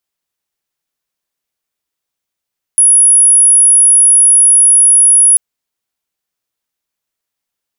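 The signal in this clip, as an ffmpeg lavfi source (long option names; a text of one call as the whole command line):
ffmpeg -f lavfi -i "sine=frequency=10300:duration=2.59:sample_rate=44100,volume=14.56dB" out.wav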